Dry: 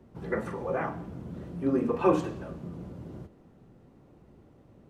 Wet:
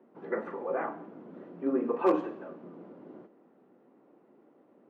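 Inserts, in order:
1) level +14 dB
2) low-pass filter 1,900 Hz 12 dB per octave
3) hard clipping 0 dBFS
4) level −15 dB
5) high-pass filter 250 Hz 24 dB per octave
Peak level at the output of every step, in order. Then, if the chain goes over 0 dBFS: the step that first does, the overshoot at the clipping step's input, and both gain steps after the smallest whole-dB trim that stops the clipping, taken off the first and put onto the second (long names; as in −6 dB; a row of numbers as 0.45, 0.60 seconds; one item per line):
+4.0, +4.0, 0.0, −15.0, −11.5 dBFS
step 1, 4.0 dB
step 1 +10 dB, step 4 −11 dB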